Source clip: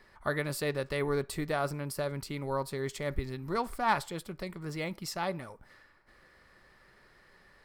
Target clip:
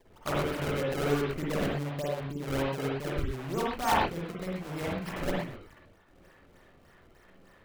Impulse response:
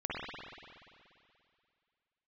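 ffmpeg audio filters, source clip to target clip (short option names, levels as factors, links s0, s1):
-filter_complex "[0:a]asettb=1/sr,asplit=3[s0][s1][s2];[s0]atrim=end=1.424[s3];[s1]atrim=start=1.42:end=3.66,asetpts=PTS-STARTPTS,afade=t=in:d=0.004:c=qsin,afade=t=out:st=2.236:d=0.004:c=qsin,lowpass=f=1100:w=0.5412,lowpass=f=1100:w=1.3066[s4];[s2]atrim=start=3.656[s5];[s3][s4]acrossfade=d=0.004:c1=hsin:c2=qsin[s6];[s6][s5]acrossfade=d=0.004:c1=qsin:c2=hsin,acrusher=samples=29:mix=1:aa=0.000001:lfo=1:lforange=46.4:lforate=3.3[s7];[1:a]atrim=start_sample=2205,atrim=end_sample=6174[s8];[s7][s8]afir=irnorm=-1:irlink=0"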